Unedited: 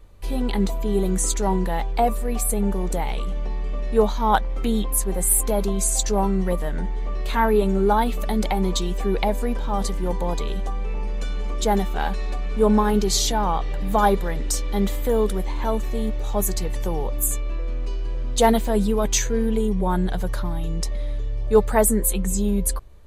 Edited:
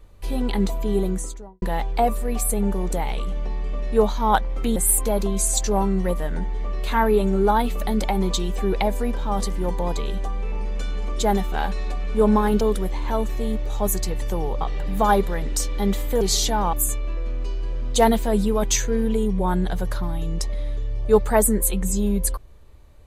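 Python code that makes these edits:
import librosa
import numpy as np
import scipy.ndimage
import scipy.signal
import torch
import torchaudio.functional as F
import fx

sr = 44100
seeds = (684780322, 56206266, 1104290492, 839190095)

y = fx.studio_fade_out(x, sr, start_s=0.9, length_s=0.72)
y = fx.edit(y, sr, fx.cut(start_s=4.76, length_s=0.42),
    fx.swap(start_s=13.03, length_s=0.52, other_s=15.15, other_length_s=2.0), tone=tone)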